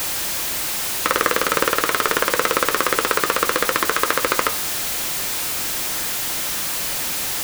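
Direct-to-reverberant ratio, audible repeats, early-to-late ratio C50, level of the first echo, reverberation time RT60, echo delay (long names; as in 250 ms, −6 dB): 10.5 dB, no echo audible, 18.5 dB, no echo audible, 0.50 s, no echo audible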